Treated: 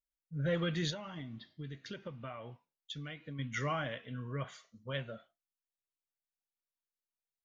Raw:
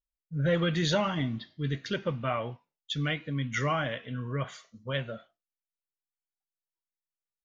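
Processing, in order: 0.9–3.39 compressor 10:1, threshold -34 dBFS, peak gain reduction 12.5 dB; gain -6.5 dB

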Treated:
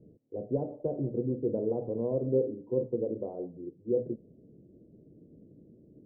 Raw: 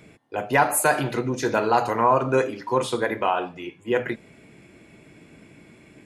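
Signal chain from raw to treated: elliptic low-pass 520 Hz, stop band 80 dB; gain -4.5 dB

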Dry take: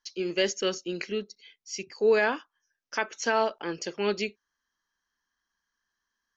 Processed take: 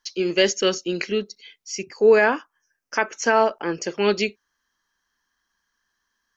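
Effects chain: 1.72–3.9 bell 3700 Hz -11.5 dB 0.59 oct; gain +7.5 dB

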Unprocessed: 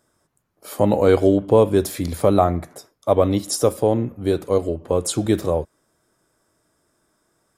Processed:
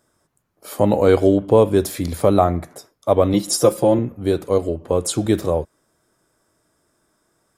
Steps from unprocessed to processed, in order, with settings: 3.33–3.99 comb 5.8 ms, depth 88%; gain +1 dB

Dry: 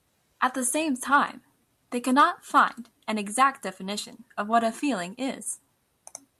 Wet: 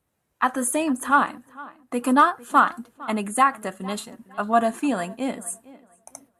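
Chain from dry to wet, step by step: gate -54 dBFS, range -8 dB; bell 4500 Hz -8 dB 1.6 oct; tape echo 0.454 s, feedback 26%, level -19 dB, low-pass 2700 Hz; gain +3.5 dB

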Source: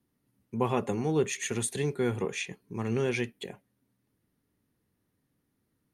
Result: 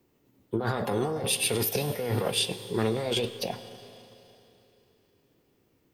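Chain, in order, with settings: negative-ratio compressor -33 dBFS, ratio -1; Schroeder reverb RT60 3.2 s, combs from 32 ms, DRR 11.5 dB; formant shift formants +6 st; gain +5 dB

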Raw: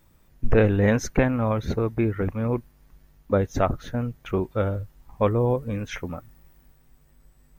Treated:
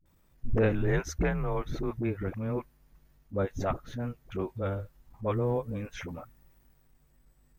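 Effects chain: dispersion highs, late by 58 ms, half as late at 370 Hz; transient shaper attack -6 dB, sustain -1 dB; 0.72–1.91 frequency shift -85 Hz; gain -6 dB

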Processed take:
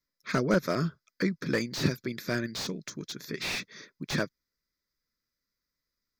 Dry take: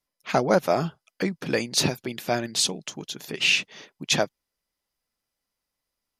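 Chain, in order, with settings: fixed phaser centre 2900 Hz, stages 6; slew limiter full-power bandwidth 94 Hz

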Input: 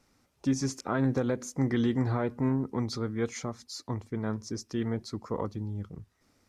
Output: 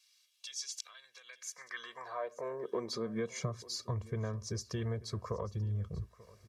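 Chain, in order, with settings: comb 1.8 ms, depth 99%; compressor, threshold -34 dBFS, peak gain reduction 12.5 dB; high-pass sweep 3300 Hz -> 62 Hz, 1.07–4.04; echo 0.888 s -20.5 dB; gain -1 dB

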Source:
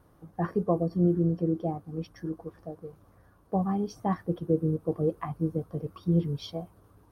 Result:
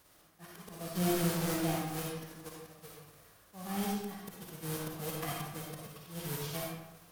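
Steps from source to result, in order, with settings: spectral whitening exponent 0.3; in parallel at -1 dB: limiter -23.5 dBFS, peak gain reduction 11.5 dB; on the sum: auto swell 0.341 s; tube stage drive 15 dB, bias 0.5; reverb RT60 0.95 s, pre-delay 15 ms, DRR -2.5 dB; gain -8.5 dB

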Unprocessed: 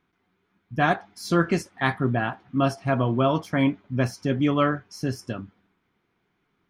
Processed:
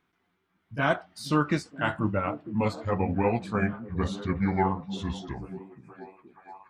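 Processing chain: gliding pitch shift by -10.5 st starting unshifted; low shelf 490 Hz -4 dB; delay with a stepping band-pass 0.473 s, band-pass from 190 Hz, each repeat 0.7 oct, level -9 dB

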